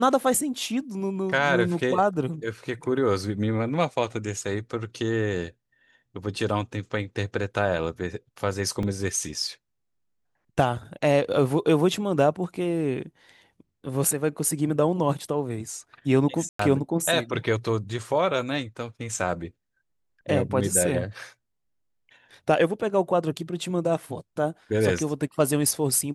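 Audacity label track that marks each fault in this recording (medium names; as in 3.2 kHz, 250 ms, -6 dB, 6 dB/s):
8.830000	8.830000	dropout 2.2 ms
16.490000	16.590000	dropout 104 ms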